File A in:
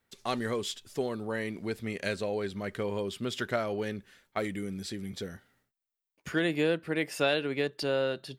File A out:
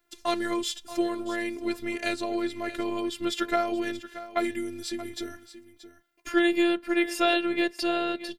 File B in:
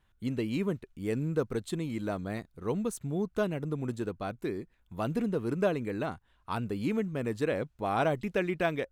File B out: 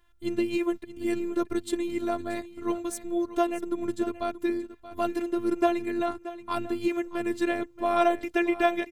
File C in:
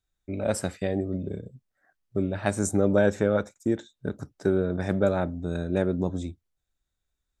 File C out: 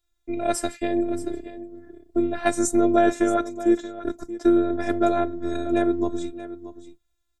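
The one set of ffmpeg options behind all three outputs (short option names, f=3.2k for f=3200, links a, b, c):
-af "aecho=1:1:629:0.188,afftfilt=real='hypot(re,im)*cos(PI*b)':imag='0':win_size=512:overlap=0.75,volume=8dB"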